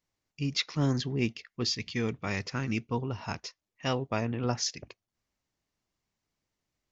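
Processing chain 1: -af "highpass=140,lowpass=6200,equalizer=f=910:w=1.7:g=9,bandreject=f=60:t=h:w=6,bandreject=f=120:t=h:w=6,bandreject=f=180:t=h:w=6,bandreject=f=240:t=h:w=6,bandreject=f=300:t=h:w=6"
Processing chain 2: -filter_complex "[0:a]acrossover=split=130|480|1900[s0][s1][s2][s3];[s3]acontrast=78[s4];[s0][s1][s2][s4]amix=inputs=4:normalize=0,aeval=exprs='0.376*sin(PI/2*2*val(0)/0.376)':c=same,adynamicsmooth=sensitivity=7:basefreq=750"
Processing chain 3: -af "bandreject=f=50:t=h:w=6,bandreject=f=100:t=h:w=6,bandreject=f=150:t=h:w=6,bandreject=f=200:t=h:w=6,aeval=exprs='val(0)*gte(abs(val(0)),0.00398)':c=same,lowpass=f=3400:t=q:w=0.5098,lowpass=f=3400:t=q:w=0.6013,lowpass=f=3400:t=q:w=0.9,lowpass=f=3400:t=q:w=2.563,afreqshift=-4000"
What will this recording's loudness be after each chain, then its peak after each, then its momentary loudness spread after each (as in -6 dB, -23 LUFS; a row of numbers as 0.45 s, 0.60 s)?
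-32.0 LUFS, -20.5 LUFS, -29.5 LUFS; -11.0 dBFS, -8.5 dBFS, -14.5 dBFS; 6 LU, 8 LU, 9 LU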